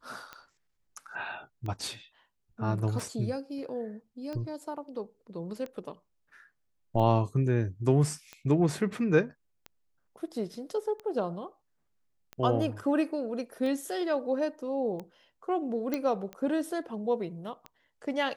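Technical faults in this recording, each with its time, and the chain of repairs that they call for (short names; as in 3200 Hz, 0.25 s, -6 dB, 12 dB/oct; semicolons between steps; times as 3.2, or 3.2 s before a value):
tick 45 rpm -26 dBFS
15.94 pop -16 dBFS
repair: de-click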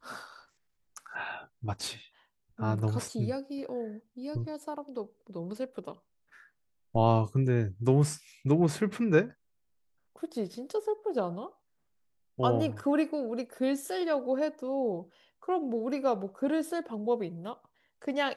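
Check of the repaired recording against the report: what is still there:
none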